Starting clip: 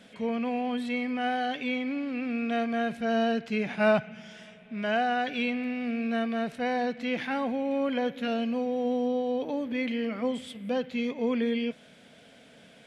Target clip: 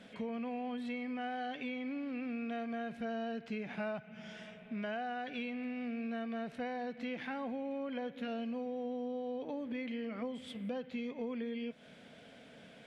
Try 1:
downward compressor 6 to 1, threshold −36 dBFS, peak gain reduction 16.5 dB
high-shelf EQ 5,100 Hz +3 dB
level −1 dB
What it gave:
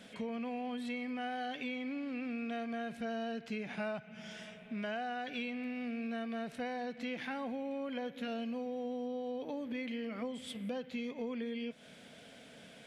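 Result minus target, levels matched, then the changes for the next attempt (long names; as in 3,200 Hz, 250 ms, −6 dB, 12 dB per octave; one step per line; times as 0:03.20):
8,000 Hz band +8.0 dB
change: high-shelf EQ 5,100 Hz −9 dB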